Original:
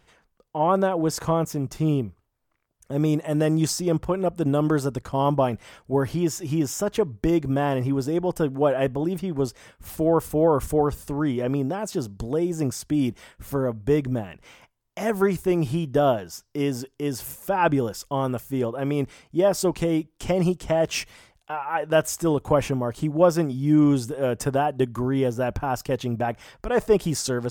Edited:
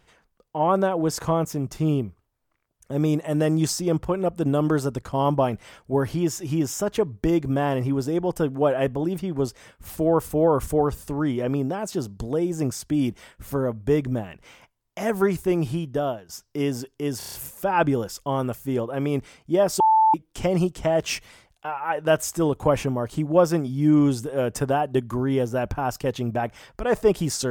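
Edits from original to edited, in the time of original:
0:15.36–0:16.29: fade out equal-power, to −14.5 dB
0:17.18: stutter 0.03 s, 6 plays
0:19.65–0:19.99: beep over 880 Hz −13.5 dBFS

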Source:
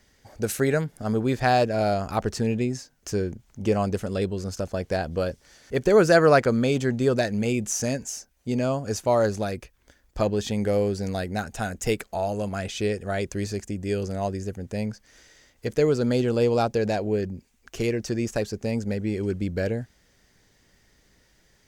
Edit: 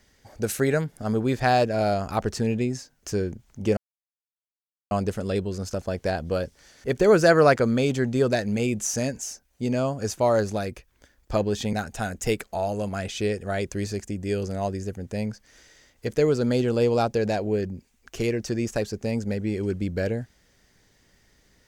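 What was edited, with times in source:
0:03.77: splice in silence 1.14 s
0:10.59–0:11.33: remove

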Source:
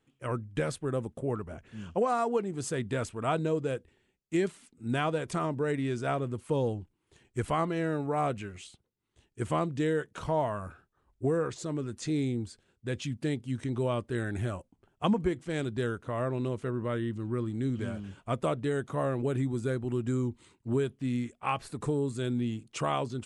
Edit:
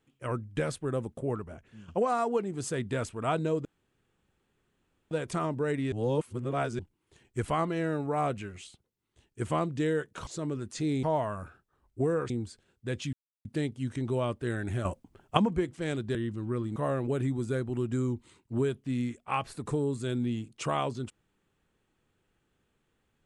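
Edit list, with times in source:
0:01.32–0:01.88: fade out, to −10.5 dB
0:03.65–0:05.11: fill with room tone
0:05.92–0:06.79: reverse
0:11.54–0:12.30: move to 0:10.27
0:13.13: splice in silence 0.32 s
0:14.53–0:15.05: clip gain +8 dB
0:15.83–0:16.97: remove
0:17.58–0:18.91: remove

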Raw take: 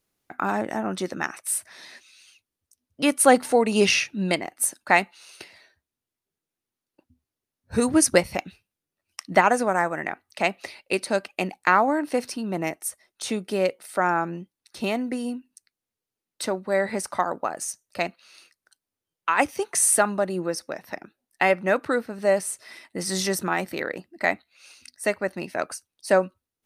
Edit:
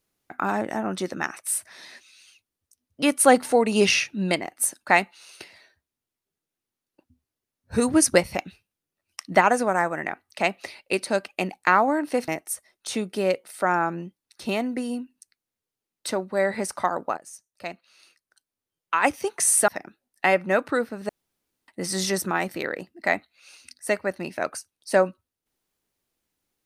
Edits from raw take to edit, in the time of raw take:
0:12.28–0:12.63: remove
0:17.52–0:19.35: fade in, from −14.5 dB
0:20.03–0:20.85: remove
0:22.26–0:22.85: fill with room tone

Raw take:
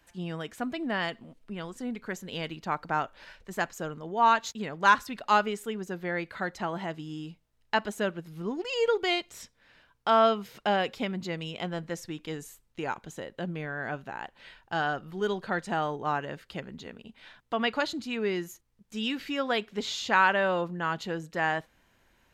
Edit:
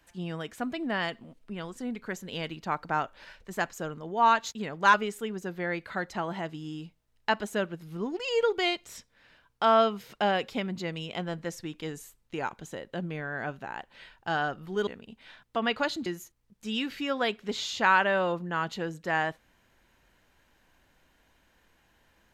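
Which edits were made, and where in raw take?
0:04.94–0:05.39: remove
0:15.32–0:16.84: remove
0:18.03–0:18.35: remove

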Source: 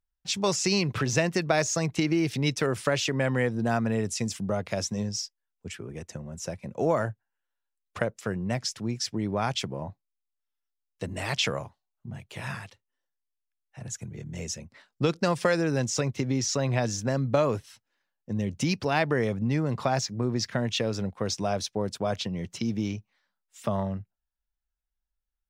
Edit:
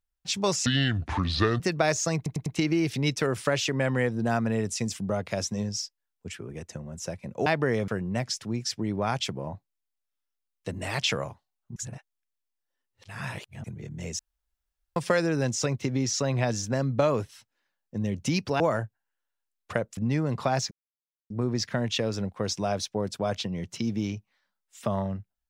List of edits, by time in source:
0:00.66–0:01.30: play speed 68%
0:01.86: stutter 0.10 s, 4 plays
0:06.86–0:08.23: swap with 0:18.95–0:19.37
0:12.11–0:13.99: reverse
0:14.54–0:15.31: fill with room tone
0:20.11: splice in silence 0.59 s

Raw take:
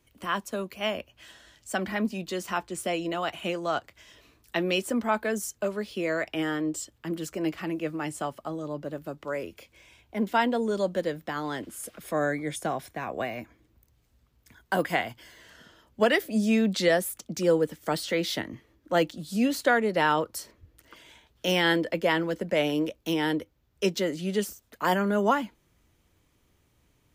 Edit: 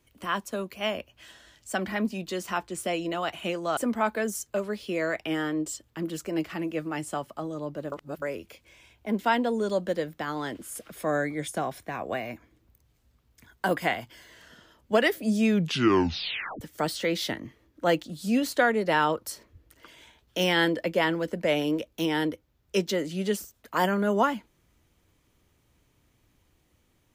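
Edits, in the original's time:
0:03.77–0:04.85: remove
0:09.00–0:09.30: reverse
0:16.55: tape stop 1.14 s

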